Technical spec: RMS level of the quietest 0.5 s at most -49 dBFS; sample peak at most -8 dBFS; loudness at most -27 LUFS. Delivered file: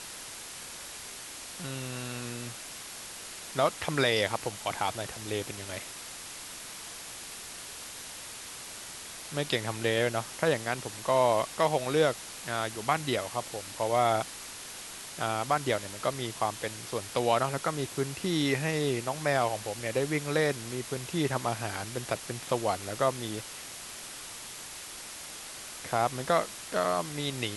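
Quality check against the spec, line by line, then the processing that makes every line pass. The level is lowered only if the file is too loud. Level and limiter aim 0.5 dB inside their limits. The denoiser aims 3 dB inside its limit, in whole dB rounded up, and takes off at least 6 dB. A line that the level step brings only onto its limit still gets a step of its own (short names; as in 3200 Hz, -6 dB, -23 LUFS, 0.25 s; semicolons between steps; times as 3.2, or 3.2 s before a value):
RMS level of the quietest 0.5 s -43 dBFS: fail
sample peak -10.0 dBFS: OK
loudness -31.5 LUFS: OK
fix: denoiser 9 dB, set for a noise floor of -43 dBFS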